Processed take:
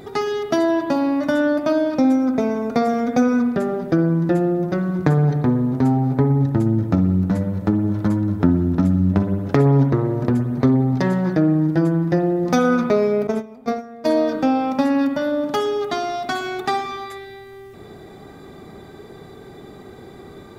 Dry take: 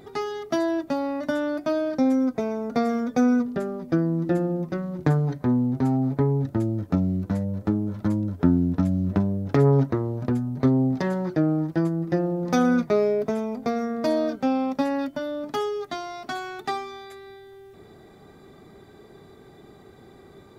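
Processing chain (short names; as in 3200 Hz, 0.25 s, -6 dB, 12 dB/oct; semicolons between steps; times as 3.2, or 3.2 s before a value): spring tank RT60 1.3 s, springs 54/58 ms, chirp 40 ms, DRR 7 dB; 13.27–14.18 gate -23 dBFS, range -17 dB; compressor 1.5:1, threshold -28 dBFS, peak gain reduction 5.5 dB; gain +8 dB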